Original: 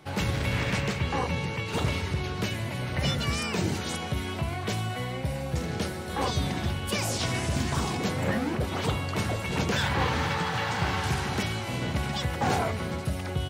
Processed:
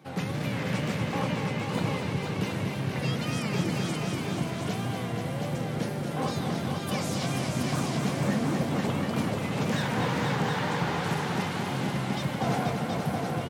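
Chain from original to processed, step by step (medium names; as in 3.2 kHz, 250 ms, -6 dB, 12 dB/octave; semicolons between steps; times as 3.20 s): tilt EQ -2 dB/octave; band-stop 390 Hz, Q 12; on a send: feedback delay 162 ms, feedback 54%, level -16.5 dB; on the sum: wow and flutter 140 cents; high-pass 140 Hz 24 dB/octave; treble shelf 8.6 kHz +9 dB; multi-head delay 241 ms, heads all three, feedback 41%, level -7 dB; trim -4 dB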